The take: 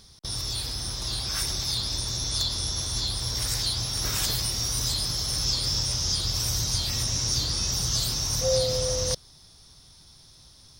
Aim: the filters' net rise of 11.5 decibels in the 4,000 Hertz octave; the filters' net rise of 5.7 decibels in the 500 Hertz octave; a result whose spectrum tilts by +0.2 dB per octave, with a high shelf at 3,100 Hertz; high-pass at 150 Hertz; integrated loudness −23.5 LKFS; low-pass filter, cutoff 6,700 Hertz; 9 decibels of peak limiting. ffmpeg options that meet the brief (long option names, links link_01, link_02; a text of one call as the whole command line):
ffmpeg -i in.wav -af "highpass=150,lowpass=6700,equalizer=frequency=500:width_type=o:gain=5.5,highshelf=frequency=3100:gain=9,equalizer=frequency=4000:width_type=o:gain=8,volume=-5.5dB,alimiter=limit=-16.5dB:level=0:latency=1" out.wav